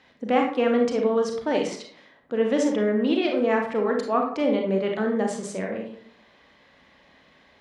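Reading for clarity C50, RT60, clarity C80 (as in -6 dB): 5.0 dB, 0.60 s, 10.0 dB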